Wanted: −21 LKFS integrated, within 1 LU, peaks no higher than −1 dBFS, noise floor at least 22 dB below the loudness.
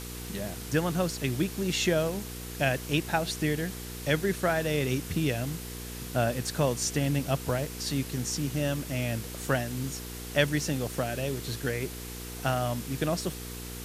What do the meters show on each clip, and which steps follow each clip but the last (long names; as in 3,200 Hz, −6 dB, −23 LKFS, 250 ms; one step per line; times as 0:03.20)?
mains hum 60 Hz; hum harmonics up to 480 Hz; level of the hum −39 dBFS; background noise floor −40 dBFS; target noise floor −52 dBFS; integrated loudness −30.0 LKFS; sample peak −9.5 dBFS; target loudness −21.0 LKFS
→ hum removal 60 Hz, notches 8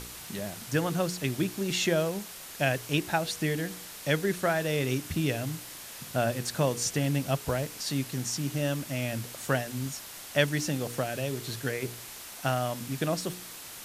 mains hum none found; background noise floor −44 dBFS; target noise floor −53 dBFS
→ broadband denoise 9 dB, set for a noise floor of −44 dBFS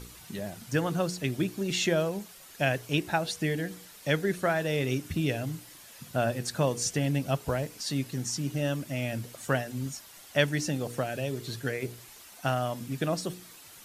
background noise floor −51 dBFS; target noise floor −53 dBFS
→ broadband denoise 6 dB, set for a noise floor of −51 dBFS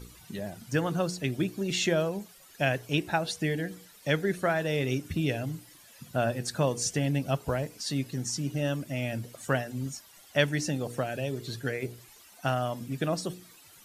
background noise floor −55 dBFS; integrated loudness −30.5 LKFS; sample peak −9.5 dBFS; target loudness −21.0 LKFS
→ level +9.5 dB
brickwall limiter −1 dBFS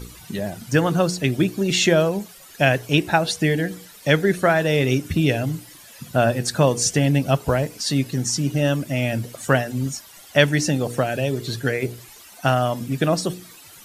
integrated loudness −21.0 LKFS; sample peak −1.0 dBFS; background noise floor −45 dBFS